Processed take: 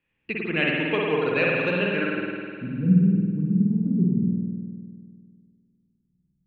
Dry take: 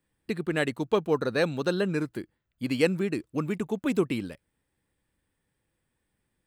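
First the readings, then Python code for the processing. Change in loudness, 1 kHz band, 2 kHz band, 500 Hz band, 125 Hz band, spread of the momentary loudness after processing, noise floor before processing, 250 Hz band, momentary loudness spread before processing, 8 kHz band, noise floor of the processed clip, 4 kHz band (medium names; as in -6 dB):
+5.0 dB, +2.5 dB, +8.0 dB, +0.5 dB, +10.0 dB, 13 LU, -80 dBFS, +7.0 dB, 10 LU, under -20 dB, -74 dBFS, +3.5 dB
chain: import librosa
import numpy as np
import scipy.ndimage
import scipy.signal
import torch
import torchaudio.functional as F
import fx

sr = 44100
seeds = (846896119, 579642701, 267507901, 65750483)

y = fx.filter_sweep_lowpass(x, sr, from_hz=2600.0, to_hz=180.0, start_s=1.92, end_s=2.47, q=7.5)
y = fx.rev_spring(y, sr, rt60_s=2.1, pass_ms=(50,), chirp_ms=35, drr_db=-3.5)
y = y * 10.0 ** (-4.0 / 20.0)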